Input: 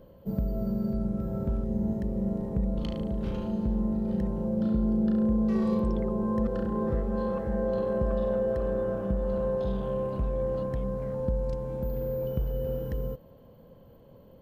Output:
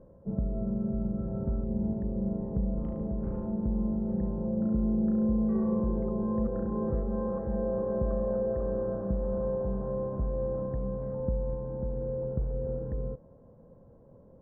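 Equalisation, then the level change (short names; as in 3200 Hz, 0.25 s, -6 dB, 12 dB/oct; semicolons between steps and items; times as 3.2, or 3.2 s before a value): Bessel low-pass 1000 Hz, order 6; -1.5 dB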